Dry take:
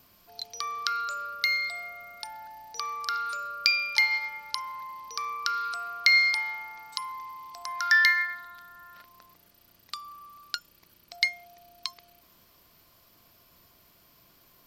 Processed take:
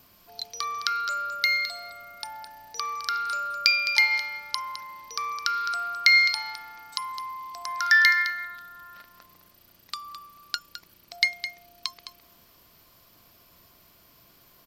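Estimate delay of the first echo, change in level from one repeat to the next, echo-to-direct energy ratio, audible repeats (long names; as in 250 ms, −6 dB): 211 ms, repeats not evenly spaced, −11.0 dB, 1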